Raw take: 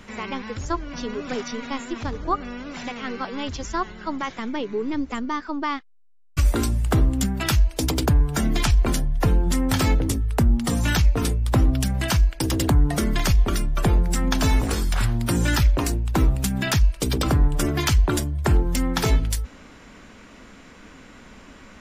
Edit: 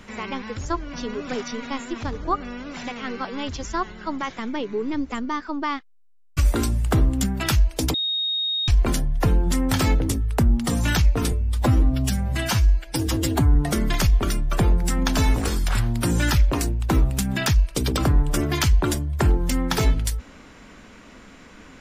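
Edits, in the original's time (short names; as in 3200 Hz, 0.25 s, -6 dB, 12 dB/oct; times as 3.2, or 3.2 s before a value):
7.94–8.68 bleep 3730 Hz -21.5 dBFS
11.32–12.81 stretch 1.5×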